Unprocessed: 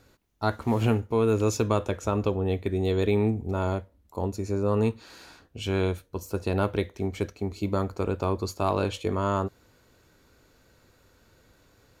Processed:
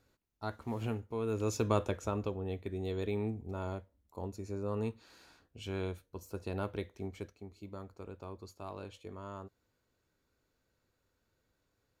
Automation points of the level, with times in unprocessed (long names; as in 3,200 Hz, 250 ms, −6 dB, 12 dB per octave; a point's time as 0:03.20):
0:01.19 −13 dB
0:01.78 −4.5 dB
0:02.35 −11.5 dB
0:07.07 −11.5 dB
0:07.51 −19 dB